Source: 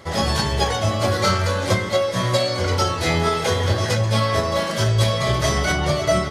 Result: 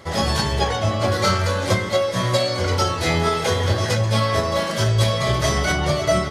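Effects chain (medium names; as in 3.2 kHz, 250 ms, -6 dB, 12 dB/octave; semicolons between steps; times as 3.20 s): 0.59–1.12 s: treble shelf 7.4 kHz -9.5 dB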